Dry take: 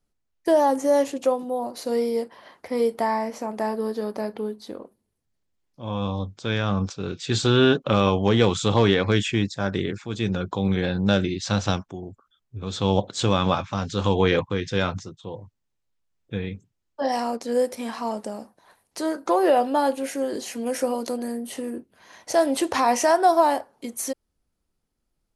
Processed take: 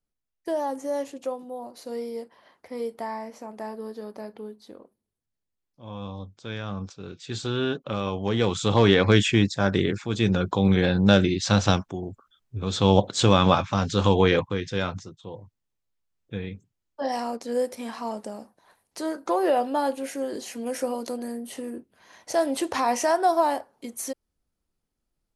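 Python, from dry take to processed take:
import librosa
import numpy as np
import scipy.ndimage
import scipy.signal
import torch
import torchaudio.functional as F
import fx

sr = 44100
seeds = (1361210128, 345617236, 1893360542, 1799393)

y = fx.gain(x, sr, db=fx.line((8.05, -9.0), (9.05, 3.0), (13.94, 3.0), (14.76, -3.5)))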